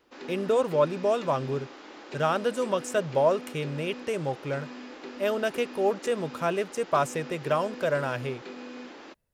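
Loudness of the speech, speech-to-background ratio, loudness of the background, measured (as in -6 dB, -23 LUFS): -28.5 LUFS, 13.5 dB, -42.0 LUFS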